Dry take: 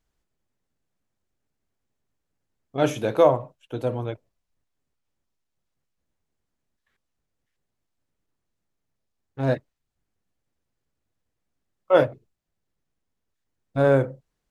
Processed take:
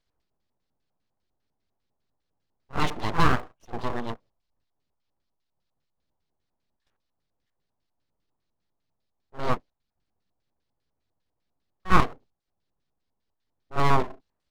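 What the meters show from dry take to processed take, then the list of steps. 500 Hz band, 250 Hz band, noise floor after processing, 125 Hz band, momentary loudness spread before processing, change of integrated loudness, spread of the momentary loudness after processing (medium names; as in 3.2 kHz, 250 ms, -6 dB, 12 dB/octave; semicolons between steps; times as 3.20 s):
-12.5 dB, -3.0 dB, -80 dBFS, -2.5 dB, 15 LU, -4.0 dB, 15 LU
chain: pre-echo 50 ms -14.5 dB; LFO low-pass square 5 Hz 890–4400 Hz; full-wave rectifier; trim -1.5 dB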